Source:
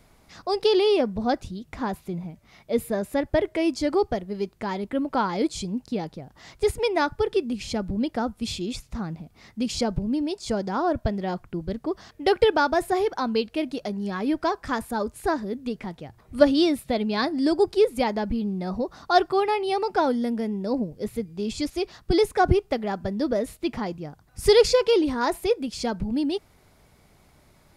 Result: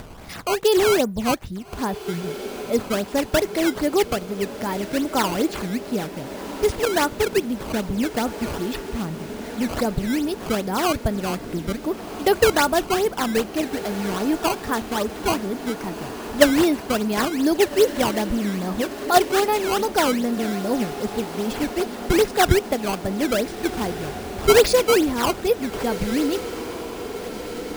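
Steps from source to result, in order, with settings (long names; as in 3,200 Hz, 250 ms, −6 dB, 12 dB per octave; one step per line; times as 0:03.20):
sample-and-hold swept by an LFO 14×, swing 160% 2.5 Hz
feedback delay with all-pass diffusion 1,536 ms, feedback 65%, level −13 dB
upward compression, threshold −29 dBFS
level +2.5 dB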